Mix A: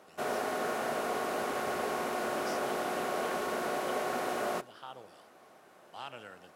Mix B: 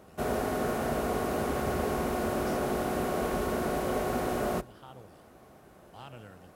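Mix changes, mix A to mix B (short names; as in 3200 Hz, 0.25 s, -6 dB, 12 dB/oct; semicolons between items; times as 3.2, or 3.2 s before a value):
speech -5.0 dB; master: remove weighting filter A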